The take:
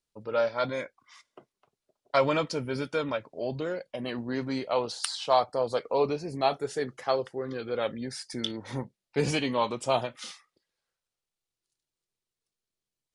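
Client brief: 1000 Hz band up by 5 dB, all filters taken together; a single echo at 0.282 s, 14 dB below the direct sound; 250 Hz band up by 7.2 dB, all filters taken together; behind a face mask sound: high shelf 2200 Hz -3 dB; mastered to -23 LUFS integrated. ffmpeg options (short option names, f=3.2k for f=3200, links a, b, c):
-af "equalizer=f=250:t=o:g=8,equalizer=f=1k:t=o:g=6.5,highshelf=f=2.2k:g=-3,aecho=1:1:282:0.2,volume=3dB"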